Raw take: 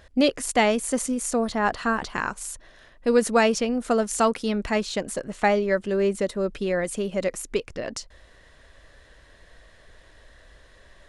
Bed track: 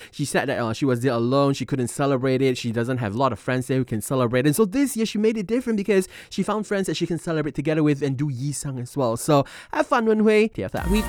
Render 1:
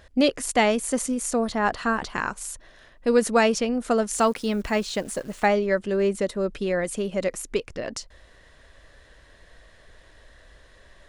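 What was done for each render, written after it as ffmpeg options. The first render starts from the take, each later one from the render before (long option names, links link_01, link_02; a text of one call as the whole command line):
ffmpeg -i in.wav -filter_complex "[0:a]asettb=1/sr,asplit=3[link_01][link_02][link_03];[link_01]atrim=end=4.154[link_04];[link_02]atrim=start=4.15:end=5.46,asetpts=PTS-STARTPTS,afade=type=in:duration=0.004:curve=qsin,afade=type=out:start_time=1.306:duration=0.004:curve=qsin,acrusher=bits=9:dc=4:mix=0:aa=0.000001[link_05];[link_03]atrim=start=5.456[link_06];[link_04][link_05]acrossfade=duration=0.004:curve1=hsin:curve2=qsin[link_07];[link_07][link_06]acrossfade=duration=0.004:curve1=qsin:curve2=hsin" out.wav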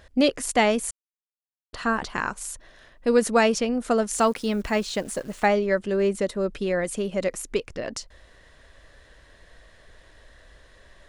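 ffmpeg -i in.wav -filter_complex "[0:a]asplit=3[link_01][link_02][link_03];[link_01]atrim=end=0.91,asetpts=PTS-STARTPTS,afade=type=out:start_time=0.906:duration=0.004:curve=hsin[link_04];[link_02]atrim=start=0.91:end=1.73,asetpts=PTS-STARTPTS,volume=0[link_05];[link_03]atrim=start=1.73,asetpts=PTS-STARTPTS,afade=type=in:duration=0.004:curve=hsin[link_06];[link_04][link_05][link_06]concat=n=3:v=0:a=1" out.wav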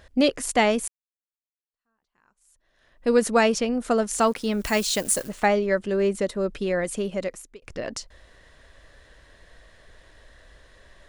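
ffmpeg -i in.wav -filter_complex "[0:a]asplit=3[link_01][link_02][link_03];[link_01]afade=type=out:start_time=4.61:duration=0.02[link_04];[link_02]aemphasis=mode=production:type=75kf,afade=type=in:start_time=4.61:duration=0.02,afade=type=out:start_time=5.27:duration=0.02[link_05];[link_03]afade=type=in:start_time=5.27:duration=0.02[link_06];[link_04][link_05][link_06]amix=inputs=3:normalize=0,asplit=3[link_07][link_08][link_09];[link_07]atrim=end=0.88,asetpts=PTS-STARTPTS,afade=type=out:start_time=0.876:duration=0.004:curve=hsin[link_10];[link_08]atrim=start=0.88:end=7.62,asetpts=PTS-STARTPTS,afade=type=in:duration=2.19:curve=exp,afade=type=out:start_time=6.19:duration=0.55[link_11];[link_09]atrim=start=7.62,asetpts=PTS-STARTPTS,afade=type=in:duration=0.004:curve=hsin[link_12];[link_10][link_11][link_12]concat=n=3:v=0:a=1" out.wav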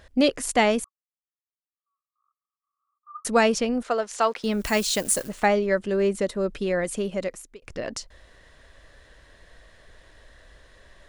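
ffmpeg -i in.wav -filter_complex "[0:a]asettb=1/sr,asplit=3[link_01][link_02][link_03];[link_01]atrim=end=0.844[link_04];[link_02]atrim=start=0.84:end=3.25,asetpts=PTS-STARTPTS,afade=type=in:duration=0.004:curve=qsin,afade=type=out:start_time=2.406:duration=0.004:curve=qsin,asuperpass=centerf=1200:order=8:qfactor=6.6[link_05];[link_03]atrim=start=3.246[link_06];[link_04][link_05]acrossfade=duration=0.004:curve1=hsin:curve2=qsin[link_07];[link_07][link_06]acrossfade=duration=0.004:curve1=qsin:curve2=hsin,asettb=1/sr,asplit=3[link_08][link_09][link_10];[link_08]atrim=end=3.834[link_11];[link_09]atrim=start=3.83:end=4.44,asetpts=PTS-STARTPTS,afade=type=in:duration=0.004:curve=qsin,afade=type=out:start_time=0.606:duration=0.004:curve=qsin,acrossover=split=400 6200:gain=0.141 1 0.141[link_12][link_13][link_14];[link_12][link_13][link_14]amix=inputs=3:normalize=0[link_15];[link_10]atrim=start=4.436[link_16];[link_11][link_15]acrossfade=duration=0.004:curve1=hsin:curve2=qsin[link_17];[link_17][link_16]acrossfade=duration=0.004:curve1=qsin:curve2=hsin" out.wav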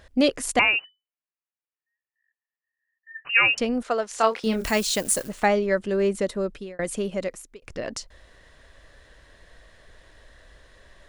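ffmpeg -i in.wav -filter_complex "[0:a]asettb=1/sr,asplit=3[link_01][link_02][link_03];[link_01]atrim=end=0.594[link_04];[link_02]atrim=start=0.59:end=3.58,asetpts=PTS-STARTPTS,afade=type=in:duration=0.004:curve=qsin,afade=type=out:start_time=2.986:duration=0.004:curve=qsin,lowpass=frequency=2600:width_type=q:width=0.5098,lowpass=frequency=2600:width_type=q:width=0.6013,lowpass=frequency=2600:width_type=q:width=0.9,lowpass=frequency=2600:width_type=q:width=2.563,afreqshift=-3000[link_05];[link_03]atrim=start=3.576[link_06];[link_04][link_05]acrossfade=duration=0.004:curve1=hsin:curve2=qsin[link_07];[link_07][link_06]acrossfade=duration=0.004:curve1=qsin:curve2=hsin,asettb=1/sr,asplit=3[link_08][link_09][link_10];[link_08]atrim=end=4.144[link_11];[link_09]atrim=start=4.14:end=4.71,asetpts=PTS-STARTPTS,afade=type=in:duration=0.004:curve=qsin,afade=type=out:start_time=0.566:duration=0.004:curve=qsin,asplit=2[link_12][link_13];[link_13]adelay=27,volume=-6dB[link_14];[link_12][link_14]amix=inputs=2:normalize=0,atrim=end_sample=25137[link_15];[link_10]atrim=start=4.706[link_16];[link_11][link_15]acrossfade=duration=0.004:curve1=hsin:curve2=qsin[link_17];[link_17][link_16]acrossfade=duration=0.004:curve1=qsin:curve2=hsin,asplit=2[link_18][link_19];[link_18]atrim=end=6.79,asetpts=PTS-STARTPTS,afade=type=out:start_time=6.38:duration=0.41[link_20];[link_19]atrim=start=6.79,asetpts=PTS-STARTPTS,afade=type=in:duration=0.004:curve=hsin[link_21];[link_20][link_21]concat=n=2:v=0:a=1" out.wav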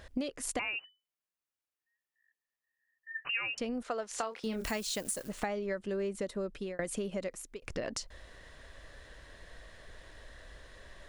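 ffmpeg -i in.wav -af "alimiter=limit=-11dB:level=0:latency=1:release=430,acompressor=threshold=-33dB:ratio=6" out.wav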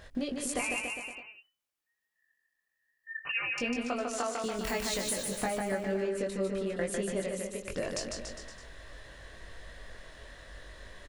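ffmpeg -i in.wav -filter_complex "[0:a]asplit=2[link_01][link_02];[link_02]adelay=21,volume=-4dB[link_03];[link_01][link_03]amix=inputs=2:normalize=0,aecho=1:1:150|285|406.5|515.8|614.3:0.631|0.398|0.251|0.158|0.1" out.wav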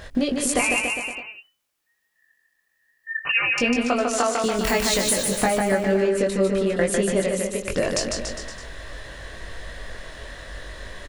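ffmpeg -i in.wav -af "volume=11.5dB" out.wav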